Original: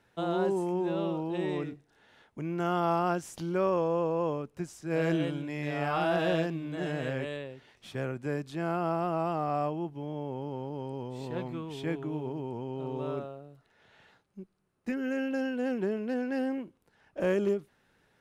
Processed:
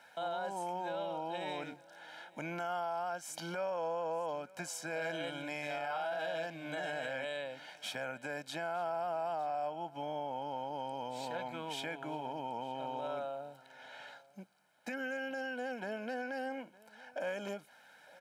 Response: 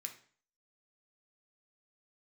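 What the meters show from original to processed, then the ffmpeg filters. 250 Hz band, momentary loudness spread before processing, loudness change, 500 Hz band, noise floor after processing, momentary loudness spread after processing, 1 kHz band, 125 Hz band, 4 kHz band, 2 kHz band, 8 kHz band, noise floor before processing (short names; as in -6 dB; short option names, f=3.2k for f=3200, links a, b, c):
-14.0 dB, 11 LU, -7.0 dB, -7.5 dB, -61 dBFS, 13 LU, -3.0 dB, -16.0 dB, +0.5 dB, -1.0 dB, n/a, -70 dBFS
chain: -af "highpass=440,aecho=1:1:1.3:0.82,acompressor=threshold=-45dB:ratio=3,alimiter=level_in=13dB:limit=-24dB:level=0:latency=1:release=27,volume=-13dB,aecho=1:1:910:0.075,volume=7.5dB"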